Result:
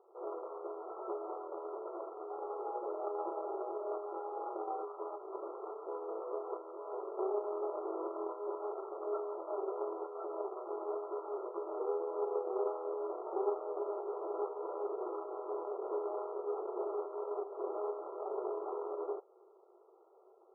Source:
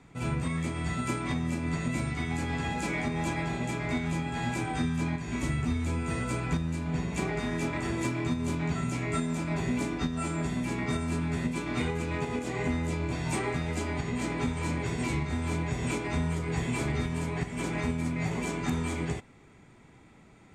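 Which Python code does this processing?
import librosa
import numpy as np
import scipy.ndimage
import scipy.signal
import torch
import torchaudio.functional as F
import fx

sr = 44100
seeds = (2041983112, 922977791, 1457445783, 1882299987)

y = scipy.ndimage.median_filter(x, 41, mode='constant')
y = fx.brickwall_bandpass(y, sr, low_hz=350.0, high_hz=1400.0)
y = y * 10.0 ** (3.5 / 20.0)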